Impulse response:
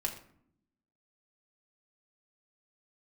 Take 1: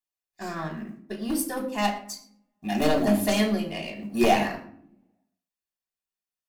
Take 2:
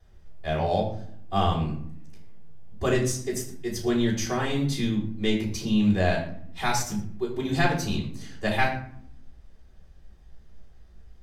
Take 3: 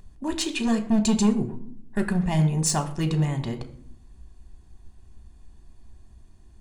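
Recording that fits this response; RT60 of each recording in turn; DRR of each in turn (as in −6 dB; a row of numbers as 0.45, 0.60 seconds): 1; 0.65, 0.60, 0.65 seconds; −0.5, −9.5, 5.0 decibels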